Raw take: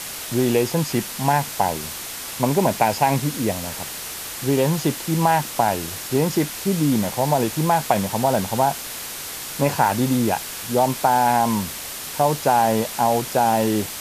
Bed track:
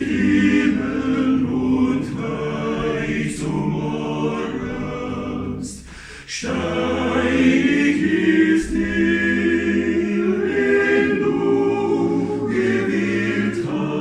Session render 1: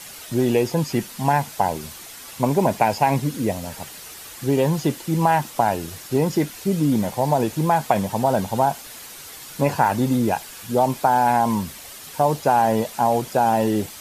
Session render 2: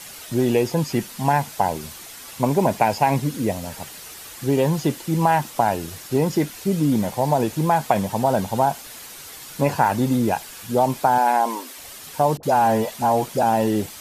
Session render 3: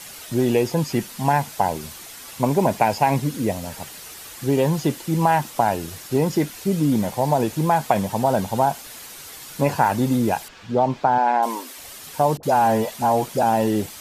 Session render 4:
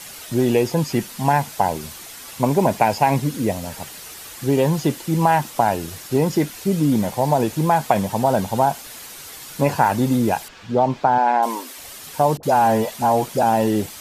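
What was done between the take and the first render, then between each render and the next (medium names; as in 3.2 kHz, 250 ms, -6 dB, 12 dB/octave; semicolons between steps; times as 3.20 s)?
noise reduction 9 dB, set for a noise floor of -32 dBFS
11.18–11.78 s: brick-wall FIR high-pass 240 Hz; 12.37–13.43 s: phase dispersion highs, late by 61 ms, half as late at 710 Hz
10.48–11.43 s: distance through air 170 m
trim +1.5 dB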